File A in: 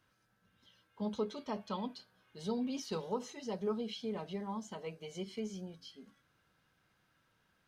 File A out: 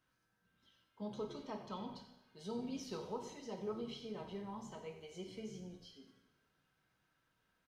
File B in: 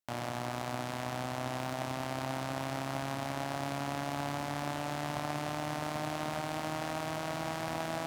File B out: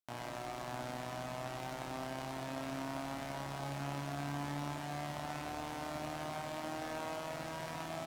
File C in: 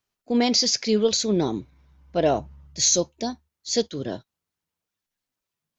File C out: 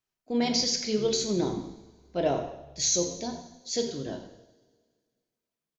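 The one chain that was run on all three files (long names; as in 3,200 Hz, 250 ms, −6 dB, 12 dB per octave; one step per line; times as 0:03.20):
echo with shifted repeats 90 ms, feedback 32%, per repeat −77 Hz, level −15.5 dB
coupled-rooms reverb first 0.78 s, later 2 s, from −17 dB, DRR 4 dB
level −7 dB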